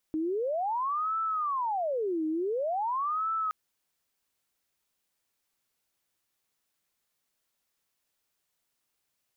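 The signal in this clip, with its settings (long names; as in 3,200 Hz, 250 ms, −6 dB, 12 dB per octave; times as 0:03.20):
siren wail 312–1,320 Hz 0.47 per second sine −27 dBFS 3.37 s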